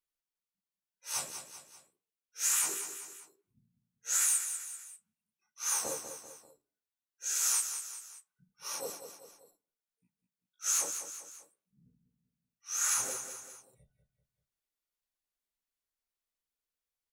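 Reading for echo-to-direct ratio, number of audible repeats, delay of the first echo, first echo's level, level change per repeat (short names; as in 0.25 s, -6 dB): -8.0 dB, 3, 0.195 s, -9.0 dB, -6.5 dB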